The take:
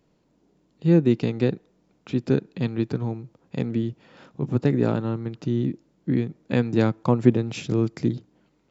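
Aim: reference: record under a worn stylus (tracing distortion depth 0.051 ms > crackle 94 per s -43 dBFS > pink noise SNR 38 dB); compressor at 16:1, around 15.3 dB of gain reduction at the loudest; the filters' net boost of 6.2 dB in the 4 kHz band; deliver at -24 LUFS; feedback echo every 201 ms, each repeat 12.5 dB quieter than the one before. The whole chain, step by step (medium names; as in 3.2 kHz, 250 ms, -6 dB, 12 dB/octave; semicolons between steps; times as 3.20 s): peaking EQ 4 kHz +7.5 dB; compression 16:1, threshold -24 dBFS; feedback delay 201 ms, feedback 24%, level -12.5 dB; tracing distortion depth 0.051 ms; crackle 94 per s -43 dBFS; pink noise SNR 38 dB; trim +7.5 dB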